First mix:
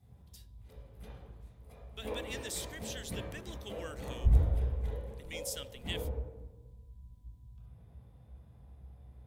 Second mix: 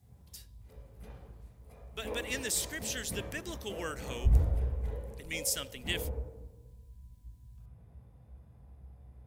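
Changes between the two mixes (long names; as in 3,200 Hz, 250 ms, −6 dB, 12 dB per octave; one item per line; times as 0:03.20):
speech +8.5 dB
master: add parametric band 3,500 Hz −6 dB 0.48 octaves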